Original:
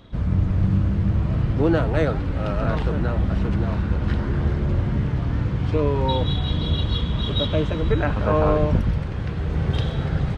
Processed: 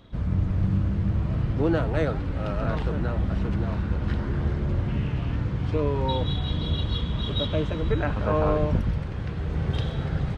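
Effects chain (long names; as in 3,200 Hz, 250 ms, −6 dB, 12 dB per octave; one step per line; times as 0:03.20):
0:04.88–0:05.36: parametric band 2,700 Hz +10.5 dB 0.38 octaves
level −4 dB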